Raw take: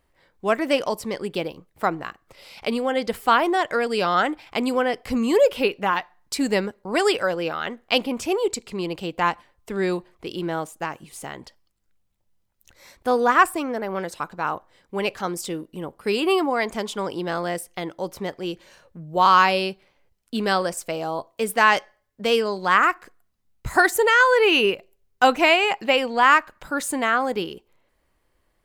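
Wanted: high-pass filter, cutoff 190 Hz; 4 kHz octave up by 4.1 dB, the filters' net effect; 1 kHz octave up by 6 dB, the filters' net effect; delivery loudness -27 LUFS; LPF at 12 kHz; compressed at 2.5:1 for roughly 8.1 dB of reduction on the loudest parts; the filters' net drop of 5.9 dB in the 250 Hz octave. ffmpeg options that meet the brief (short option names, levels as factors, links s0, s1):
-af "highpass=190,lowpass=12000,equalizer=f=250:t=o:g=-7.5,equalizer=f=1000:t=o:g=7.5,equalizer=f=4000:t=o:g=5.5,acompressor=threshold=0.141:ratio=2.5,volume=0.631"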